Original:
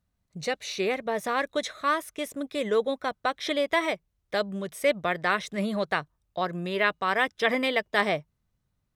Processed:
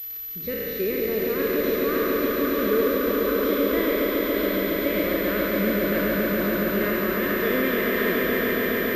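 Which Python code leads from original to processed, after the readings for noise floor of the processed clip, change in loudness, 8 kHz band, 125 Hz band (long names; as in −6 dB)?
−32 dBFS, +4.5 dB, −1.5 dB, +6.0 dB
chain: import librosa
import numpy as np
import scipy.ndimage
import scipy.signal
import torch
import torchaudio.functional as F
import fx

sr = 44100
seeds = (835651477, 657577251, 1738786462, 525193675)

p1 = fx.spec_trails(x, sr, decay_s=2.7)
p2 = fx.tilt_eq(p1, sr, slope=-4.0)
p3 = fx.dmg_crackle(p2, sr, seeds[0], per_s=250.0, level_db=-28.0)
p4 = fx.quant_dither(p3, sr, seeds[1], bits=6, dither='triangular')
p5 = p3 + F.gain(torch.from_numpy(p4), -6.5).numpy()
p6 = fx.fixed_phaser(p5, sr, hz=330.0, stages=4)
p7 = fx.echo_swell(p6, sr, ms=140, loudest=5, wet_db=-5.5)
p8 = fx.pwm(p7, sr, carrier_hz=12000.0)
y = F.gain(torch.from_numpy(p8), -8.0).numpy()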